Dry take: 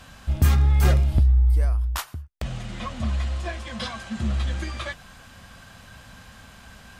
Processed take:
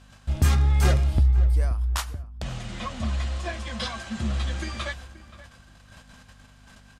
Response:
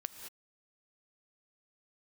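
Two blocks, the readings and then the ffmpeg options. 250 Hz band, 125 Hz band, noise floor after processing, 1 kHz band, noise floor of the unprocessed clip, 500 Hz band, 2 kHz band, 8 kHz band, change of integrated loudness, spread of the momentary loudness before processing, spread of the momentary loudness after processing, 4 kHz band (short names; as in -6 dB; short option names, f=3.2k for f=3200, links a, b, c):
-1.0 dB, -2.0 dB, -53 dBFS, 0.0 dB, -48 dBFS, 0.0 dB, 0.0 dB, +1.5 dB, -1.5 dB, 15 LU, 14 LU, +1.0 dB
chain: -filter_complex "[0:a]lowpass=10k,agate=range=-11dB:threshold=-44dB:ratio=16:detection=peak,aeval=exprs='val(0)+0.00316*(sin(2*PI*50*n/s)+sin(2*PI*2*50*n/s)/2+sin(2*PI*3*50*n/s)/3+sin(2*PI*4*50*n/s)/4+sin(2*PI*5*50*n/s)/5)':c=same,bass=f=250:g=-2,treble=f=4k:g=3,asplit=2[a][b];[b]adelay=528,lowpass=f=2k:p=1,volume=-15.5dB,asplit=2[c][d];[d]adelay=528,lowpass=f=2k:p=1,volume=0.17[e];[c][e]amix=inputs=2:normalize=0[f];[a][f]amix=inputs=2:normalize=0"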